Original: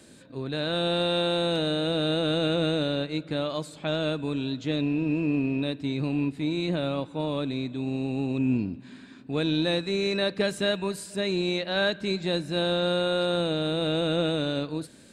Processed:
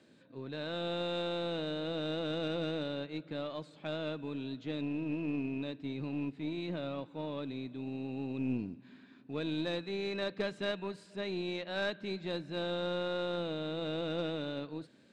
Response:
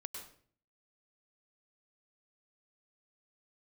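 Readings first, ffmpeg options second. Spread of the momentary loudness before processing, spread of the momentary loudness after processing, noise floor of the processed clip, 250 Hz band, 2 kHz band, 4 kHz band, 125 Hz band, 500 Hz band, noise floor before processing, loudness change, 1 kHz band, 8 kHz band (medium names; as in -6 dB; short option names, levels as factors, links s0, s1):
6 LU, 6 LU, -59 dBFS, -10.0 dB, -9.5 dB, -12.0 dB, -11.5 dB, -9.5 dB, -49 dBFS, -10.0 dB, -9.0 dB, under -15 dB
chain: -af "acrusher=bits=9:mode=log:mix=0:aa=0.000001,highpass=120,lowpass=3900,aeval=exprs='0.211*(cos(1*acos(clip(val(0)/0.211,-1,1)))-cos(1*PI/2))+0.015*(cos(3*acos(clip(val(0)/0.211,-1,1)))-cos(3*PI/2))+0.015*(cos(4*acos(clip(val(0)/0.211,-1,1)))-cos(4*PI/2))+0.00237*(cos(6*acos(clip(val(0)/0.211,-1,1)))-cos(6*PI/2))':c=same,volume=0.422"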